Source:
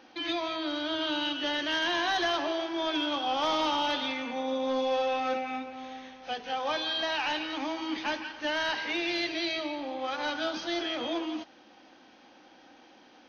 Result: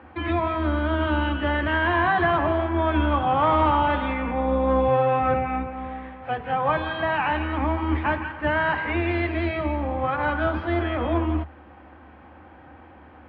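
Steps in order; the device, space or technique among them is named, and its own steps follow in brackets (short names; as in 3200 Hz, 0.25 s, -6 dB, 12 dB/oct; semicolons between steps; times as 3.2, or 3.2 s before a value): sub-octave bass pedal (octaver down 2 oct, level 0 dB; speaker cabinet 66–2100 Hz, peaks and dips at 76 Hz +7 dB, 160 Hz +5 dB, 1100 Hz +5 dB); gain +7.5 dB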